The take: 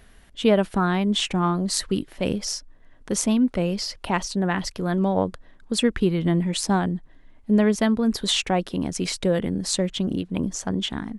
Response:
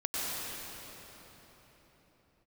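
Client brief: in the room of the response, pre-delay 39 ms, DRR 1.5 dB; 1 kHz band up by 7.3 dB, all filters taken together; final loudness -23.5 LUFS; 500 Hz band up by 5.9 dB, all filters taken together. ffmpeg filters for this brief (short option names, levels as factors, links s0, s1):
-filter_complex "[0:a]equalizer=f=500:t=o:g=5.5,equalizer=f=1000:t=o:g=7.5,asplit=2[s0][s1];[1:a]atrim=start_sample=2205,adelay=39[s2];[s1][s2]afir=irnorm=-1:irlink=0,volume=0.355[s3];[s0][s3]amix=inputs=2:normalize=0,volume=0.562"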